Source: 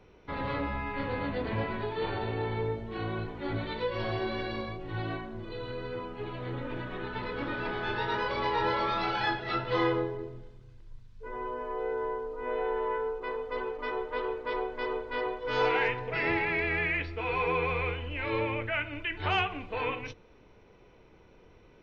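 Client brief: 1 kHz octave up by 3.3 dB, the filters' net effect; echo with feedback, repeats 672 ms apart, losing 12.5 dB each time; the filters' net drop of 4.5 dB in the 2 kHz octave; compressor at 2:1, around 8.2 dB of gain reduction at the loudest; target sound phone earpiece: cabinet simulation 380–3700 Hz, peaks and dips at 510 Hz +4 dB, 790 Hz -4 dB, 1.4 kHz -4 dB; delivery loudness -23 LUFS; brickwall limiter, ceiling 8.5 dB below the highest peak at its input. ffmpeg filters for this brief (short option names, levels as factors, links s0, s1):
-af "equalizer=f=1000:t=o:g=7.5,equalizer=f=2000:t=o:g=-6.5,acompressor=threshold=0.0178:ratio=2,alimiter=level_in=1.78:limit=0.0631:level=0:latency=1,volume=0.562,highpass=380,equalizer=f=510:t=q:w=4:g=4,equalizer=f=790:t=q:w=4:g=-4,equalizer=f=1400:t=q:w=4:g=-4,lowpass=f=3700:w=0.5412,lowpass=f=3700:w=1.3066,aecho=1:1:672|1344|2016:0.237|0.0569|0.0137,volume=6.68"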